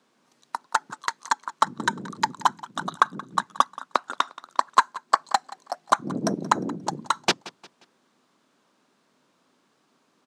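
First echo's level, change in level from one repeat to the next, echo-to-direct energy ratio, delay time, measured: −19.0 dB, −8.5 dB, −18.5 dB, 177 ms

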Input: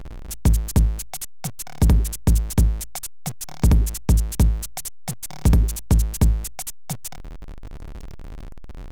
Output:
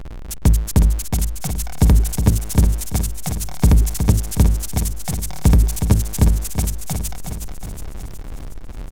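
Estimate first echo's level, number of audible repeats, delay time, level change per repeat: −7.0 dB, 6, 366 ms, −5.0 dB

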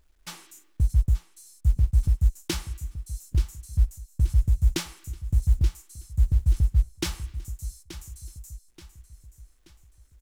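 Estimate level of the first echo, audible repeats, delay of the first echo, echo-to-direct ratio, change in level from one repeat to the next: −13.5 dB, 3, 879 ms, −12.5 dB, −7.5 dB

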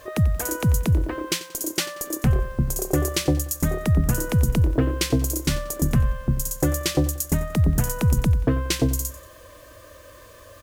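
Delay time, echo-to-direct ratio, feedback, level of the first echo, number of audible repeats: 91 ms, −15.5 dB, 38%, −16.0 dB, 3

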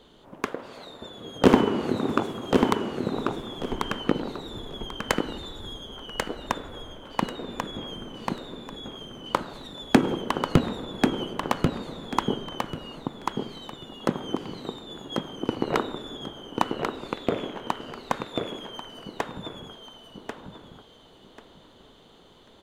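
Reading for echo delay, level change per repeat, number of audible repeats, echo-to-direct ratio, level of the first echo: 1,090 ms, −12.5 dB, 3, −3.5 dB, −4.0 dB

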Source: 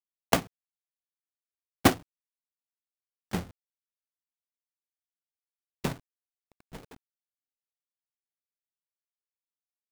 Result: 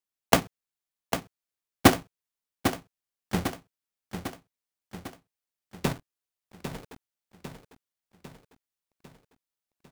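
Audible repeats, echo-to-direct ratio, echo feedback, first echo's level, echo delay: 6, −7.5 dB, 55%, −9.0 dB, 800 ms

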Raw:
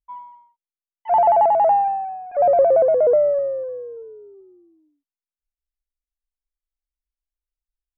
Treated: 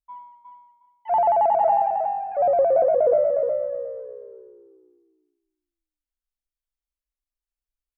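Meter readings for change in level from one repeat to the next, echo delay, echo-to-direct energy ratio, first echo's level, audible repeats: −15.0 dB, 360 ms, −6.0 dB, −6.0 dB, 2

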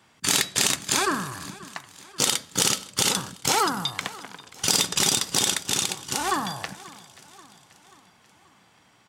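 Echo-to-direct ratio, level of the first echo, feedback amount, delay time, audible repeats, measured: −18.5 dB, −20.0 dB, 55%, 534 ms, 3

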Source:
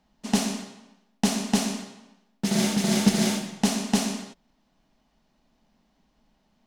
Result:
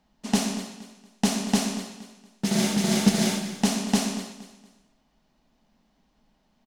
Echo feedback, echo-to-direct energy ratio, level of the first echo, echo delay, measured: 32%, −13.5 dB, −14.0 dB, 234 ms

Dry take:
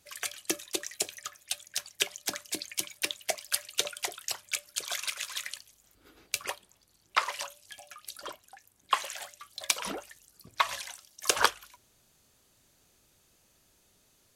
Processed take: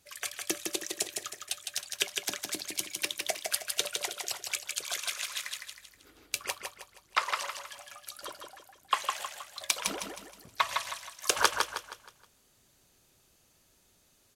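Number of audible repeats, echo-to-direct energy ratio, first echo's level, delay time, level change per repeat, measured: 4, −4.0 dB, −4.5 dB, 158 ms, −8.0 dB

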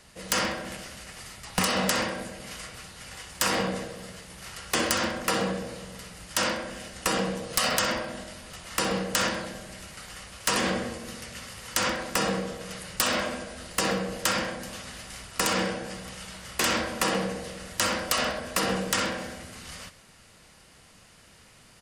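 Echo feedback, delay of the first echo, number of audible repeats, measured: 52%, 65 ms, 3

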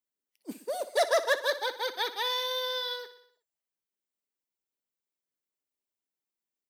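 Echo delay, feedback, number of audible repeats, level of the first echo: 61 ms, 58%, 5, −14.0 dB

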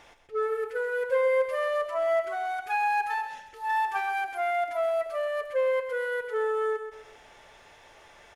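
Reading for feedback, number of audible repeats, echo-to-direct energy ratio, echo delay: 35%, 3, −8.5 dB, 130 ms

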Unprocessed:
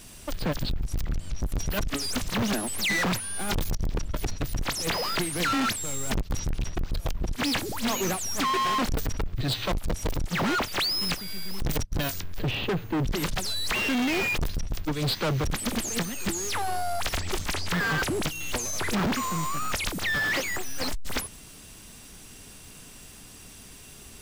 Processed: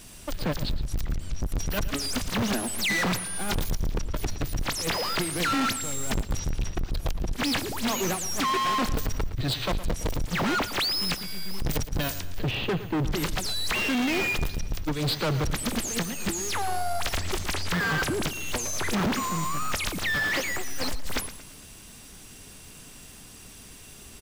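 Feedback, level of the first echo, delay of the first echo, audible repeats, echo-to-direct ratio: 44%, −14.0 dB, 114 ms, 3, −13.0 dB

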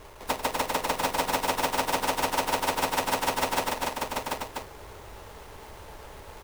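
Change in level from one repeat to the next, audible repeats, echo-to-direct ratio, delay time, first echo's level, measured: repeats not evenly spaced, 5, 0.5 dB, 93 ms, −14.0 dB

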